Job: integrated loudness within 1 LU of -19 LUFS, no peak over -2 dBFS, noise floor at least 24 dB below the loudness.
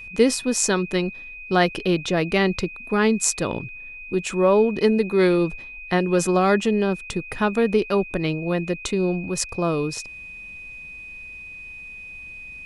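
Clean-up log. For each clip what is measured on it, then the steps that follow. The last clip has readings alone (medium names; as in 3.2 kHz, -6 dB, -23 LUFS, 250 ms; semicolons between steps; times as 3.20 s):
steady tone 2.5 kHz; tone level -36 dBFS; loudness -22.0 LUFS; peak level -2.5 dBFS; loudness target -19.0 LUFS
-> band-stop 2.5 kHz, Q 30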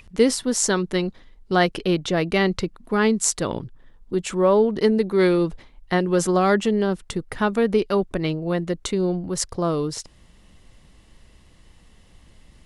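steady tone not found; loudness -22.0 LUFS; peak level -2.5 dBFS; loudness target -19.0 LUFS
-> trim +3 dB; peak limiter -2 dBFS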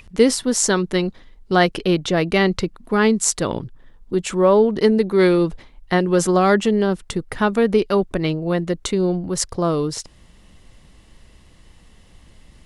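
loudness -19.0 LUFS; peak level -2.0 dBFS; noise floor -50 dBFS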